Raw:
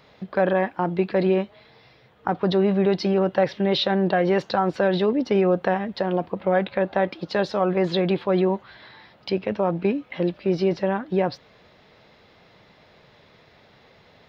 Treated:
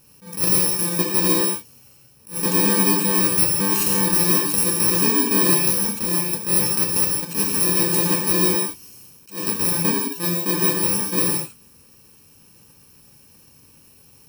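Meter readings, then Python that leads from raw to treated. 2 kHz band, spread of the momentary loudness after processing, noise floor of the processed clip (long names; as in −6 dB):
+2.0 dB, 6 LU, −52 dBFS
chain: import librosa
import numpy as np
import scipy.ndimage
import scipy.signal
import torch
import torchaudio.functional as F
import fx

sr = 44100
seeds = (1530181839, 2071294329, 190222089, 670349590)

y = fx.bit_reversed(x, sr, seeds[0], block=64)
y = fx.rev_gated(y, sr, seeds[1], gate_ms=200, shape='flat', drr_db=0.0)
y = fx.attack_slew(y, sr, db_per_s=200.0)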